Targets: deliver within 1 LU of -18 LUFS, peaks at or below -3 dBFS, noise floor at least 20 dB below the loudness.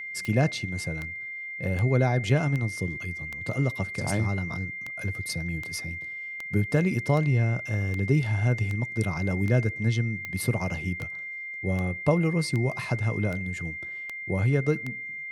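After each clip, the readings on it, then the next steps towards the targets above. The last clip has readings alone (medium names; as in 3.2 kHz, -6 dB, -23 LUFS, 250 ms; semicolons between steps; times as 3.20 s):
clicks found 20; steady tone 2.1 kHz; tone level -34 dBFS; loudness -27.5 LUFS; peak level -9.0 dBFS; loudness target -18.0 LUFS
-> de-click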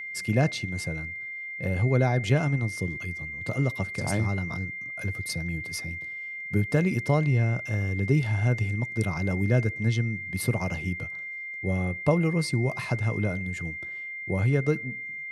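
clicks found 0; steady tone 2.1 kHz; tone level -34 dBFS
-> band-stop 2.1 kHz, Q 30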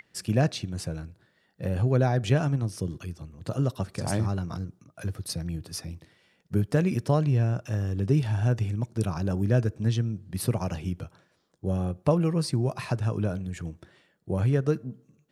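steady tone not found; loudness -28.0 LUFS; peak level -9.0 dBFS; loudness target -18.0 LUFS
-> trim +10 dB; peak limiter -3 dBFS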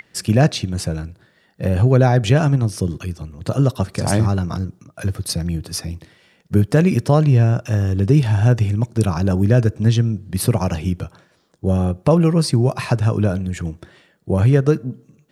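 loudness -18.5 LUFS; peak level -3.0 dBFS; noise floor -58 dBFS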